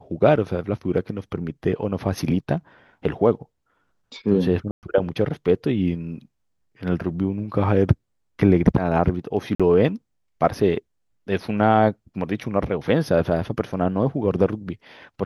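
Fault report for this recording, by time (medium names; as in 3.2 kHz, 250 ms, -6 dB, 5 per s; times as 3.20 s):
4.71–4.83 s: dropout 118 ms
9.55–9.60 s: dropout 46 ms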